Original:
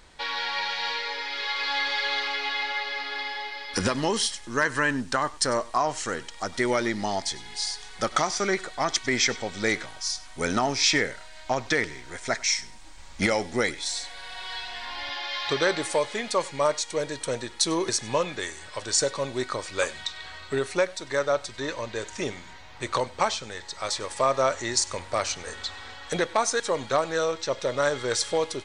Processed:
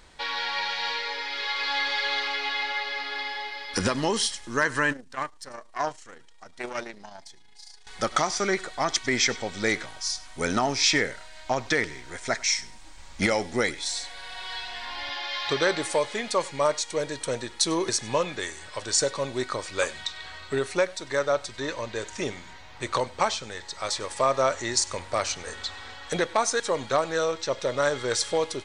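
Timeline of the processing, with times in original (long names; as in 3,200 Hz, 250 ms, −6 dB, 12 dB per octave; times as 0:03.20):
0:04.92–0:07.87: saturating transformer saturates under 900 Hz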